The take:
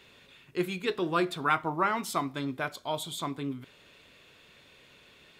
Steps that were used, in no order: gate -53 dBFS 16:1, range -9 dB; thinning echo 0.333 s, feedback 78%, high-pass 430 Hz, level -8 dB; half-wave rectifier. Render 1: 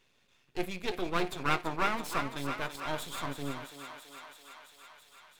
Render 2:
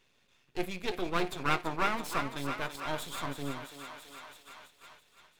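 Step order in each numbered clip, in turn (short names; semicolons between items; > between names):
half-wave rectifier > gate > thinning echo; half-wave rectifier > thinning echo > gate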